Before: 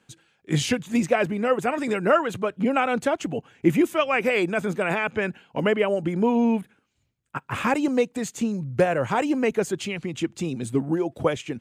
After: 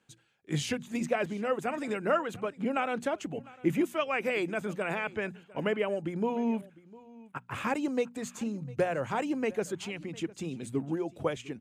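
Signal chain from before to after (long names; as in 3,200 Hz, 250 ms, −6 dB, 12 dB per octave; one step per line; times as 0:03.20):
mains-hum notches 60/120/180/240 Hz
single-tap delay 703 ms −21.5 dB
level −8 dB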